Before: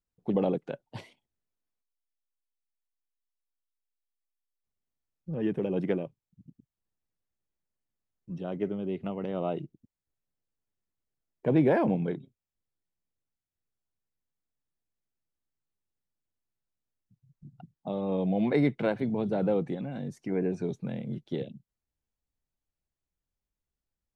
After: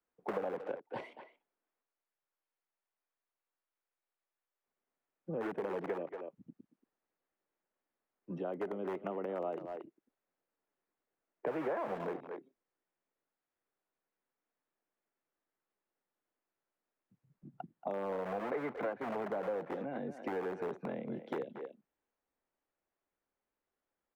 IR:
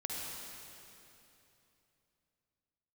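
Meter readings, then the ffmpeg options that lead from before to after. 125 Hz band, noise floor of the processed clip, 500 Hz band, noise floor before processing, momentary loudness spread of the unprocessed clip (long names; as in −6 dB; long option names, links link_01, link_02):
−17.0 dB, below −85 dBFS, −6.5 dB, below −85 dBFS, 16 LU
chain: -filter_complex "[0:a]acrossover=split=190|350|1600[link_01][link_02][link_03][link_04];[link_02]aeval=exprs='(mod(42.2*val(0)+1,2)-1)/42.2':channel_layout=same[link_05];[link_01][link_05][link_03][link_04]amix=inputs=4:normalize=0,acrossover=split=270 2200:gain=0.0708 1 0.112[link_06][link_07][link_08];[link_06][link_07][link_08]amix=inputs=3:normalize=0,acrossover=split=2600[link_09][link_10];[link_10]acompressor=threshold=-58dB:ratio=4:attack=1:release=60[link_11];[link_09][link_11]amix=inputs=2:normalize=0,asplit=2[link_12][link_13];[link_13]adelay=230,highpass=300,lowpass=3400,asoftclip=type=hard:threshold=-26dB,volume=-13dB[link_14];[link_12][link_14]amix=inputs=2:normalize=0,acompressor=threshold=-46dB:ratio=4,volume=9dB"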